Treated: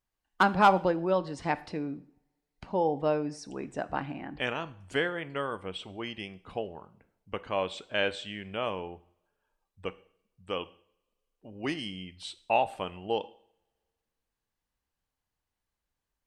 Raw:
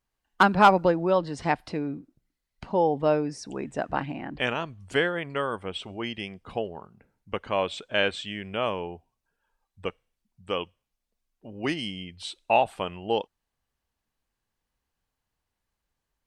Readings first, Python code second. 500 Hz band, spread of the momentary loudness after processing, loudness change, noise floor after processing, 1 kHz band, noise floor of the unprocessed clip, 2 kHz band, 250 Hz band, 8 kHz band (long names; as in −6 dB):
−4.5 dB, 14 LU, −4.0 dB, below −85 dBFS, −4.0 dB, −84 dBFS, −4.5 dB, −4.5 dB, −4.5 dB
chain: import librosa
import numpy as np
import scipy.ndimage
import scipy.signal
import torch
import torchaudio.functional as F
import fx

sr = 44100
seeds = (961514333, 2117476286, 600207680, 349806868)

y = fx.rev_double_slope(x, sr, seeds[0], early_s=0.55, late_s=2.0, knee_db=-28, drr_db=13.5)
y = F.gain(torch.from_numpy(y), -4.5).numpy()